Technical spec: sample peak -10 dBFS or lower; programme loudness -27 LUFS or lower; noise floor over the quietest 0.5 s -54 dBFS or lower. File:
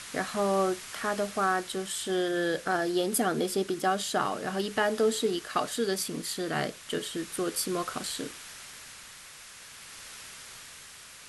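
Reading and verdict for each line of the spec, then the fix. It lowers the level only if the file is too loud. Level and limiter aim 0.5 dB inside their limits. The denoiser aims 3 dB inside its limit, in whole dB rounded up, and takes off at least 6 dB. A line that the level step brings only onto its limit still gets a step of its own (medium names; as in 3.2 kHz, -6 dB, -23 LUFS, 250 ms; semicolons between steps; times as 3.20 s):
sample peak -14.0 dBFS: pass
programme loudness -29.5 LUFS: pass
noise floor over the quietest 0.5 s -48 dBFS: fail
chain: noise reduction 9 dB, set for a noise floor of -48 dBFS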